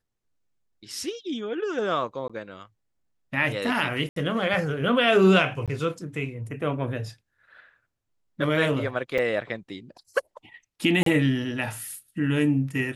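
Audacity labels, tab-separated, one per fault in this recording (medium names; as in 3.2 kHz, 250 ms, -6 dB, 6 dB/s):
2.280000	2.300000	dropout 16 ms
4.090000	4.160000	dropout 73 ms
5.660000	5.680000	dropout 17 ms
9.180000	9.190000	dropout 5.3 ms
11.030000	11.060000	dropout 33 ms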